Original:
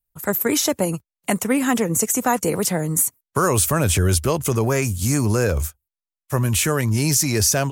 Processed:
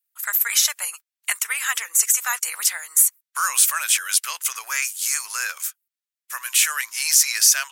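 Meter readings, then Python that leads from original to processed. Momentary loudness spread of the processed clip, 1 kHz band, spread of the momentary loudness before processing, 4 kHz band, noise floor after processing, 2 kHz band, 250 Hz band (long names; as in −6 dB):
11 LU, −5.5 dB, 6 LU, +4.0 dB, below −85 dBFS, +3.0 dB, below −40 dB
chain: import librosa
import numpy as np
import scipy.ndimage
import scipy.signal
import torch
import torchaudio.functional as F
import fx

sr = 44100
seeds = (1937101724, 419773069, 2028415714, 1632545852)

y = scipy.signal.sosfilt(scipy.signal.butter(4, 1400.0, 'highpass', fs=sr, output='sos'), x)
y = y * 10.0 ** (4.0 / 20.0)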